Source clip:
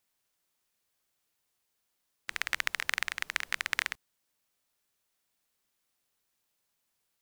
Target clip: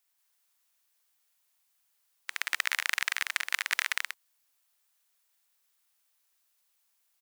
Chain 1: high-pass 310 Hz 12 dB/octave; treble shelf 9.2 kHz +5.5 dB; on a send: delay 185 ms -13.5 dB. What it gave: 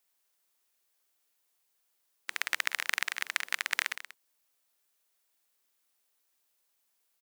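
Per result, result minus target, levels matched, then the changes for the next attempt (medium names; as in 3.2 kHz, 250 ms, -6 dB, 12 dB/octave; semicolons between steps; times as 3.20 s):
250 Hz band +12.5 dB; echo-to-direct -12 dB
change: high-pass 760 Hz 12 dB/octave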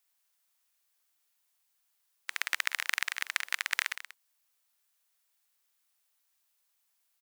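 echo-to-direct -12 dB
change: delay 185 ms -1.5 dB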